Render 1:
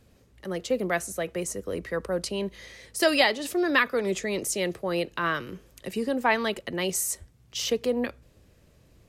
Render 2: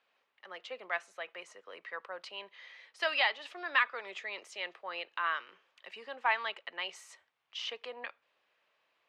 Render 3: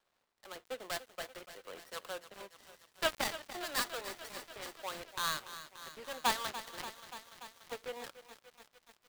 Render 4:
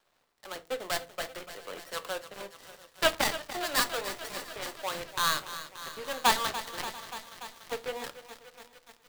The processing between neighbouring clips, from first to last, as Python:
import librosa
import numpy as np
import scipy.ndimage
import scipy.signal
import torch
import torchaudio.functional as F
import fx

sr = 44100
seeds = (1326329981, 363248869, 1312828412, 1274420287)

y1 = scipy.signal.sosfilt(scipy.signal.cheby1(2, 1.0, [910.0, 3100.0], 'bandpass', fs=sr, output='sos'), x)
y1 = y1 * librosa.db_to_amplitude(-4.0)
y2 = fx.dead_time(y1, sr, dead_ms=0.22)
y2 = fx.echo_crushed(y2, sr, ms=290, feedback_pct=80, bits=9, wet_db=-12.5)
y2 = y2 * librosa.db_to_amplitude(2.5)
y3 = y2 + 10.0 ** (-23.0 / 20.0) * np.pad(y2, (int(689 * sr / 1000.0), 0))[:len(y2)]
y3 = fx.room_shoebox(y3, sr, seeds[0], volume_m3=130.0, walls='furnished', distance_m=0.39)
y3 = y3 * librosa.db_to_amplitude(7.0)